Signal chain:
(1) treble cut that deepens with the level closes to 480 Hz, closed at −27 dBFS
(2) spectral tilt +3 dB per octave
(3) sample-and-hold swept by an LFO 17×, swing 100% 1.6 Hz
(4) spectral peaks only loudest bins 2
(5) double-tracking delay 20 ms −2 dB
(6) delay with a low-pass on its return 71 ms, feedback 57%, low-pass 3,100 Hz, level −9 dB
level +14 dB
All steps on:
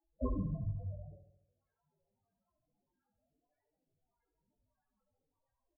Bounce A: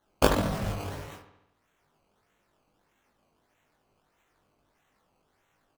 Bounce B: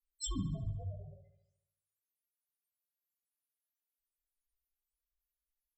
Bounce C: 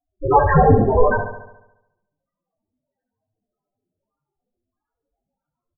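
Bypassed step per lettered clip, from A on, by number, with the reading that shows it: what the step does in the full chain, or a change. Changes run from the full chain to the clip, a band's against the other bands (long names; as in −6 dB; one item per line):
4, 125 Hz band −12.5 dB
3, 500 Hz band −6.0 dB
1, 1 kHz band +18.0 dB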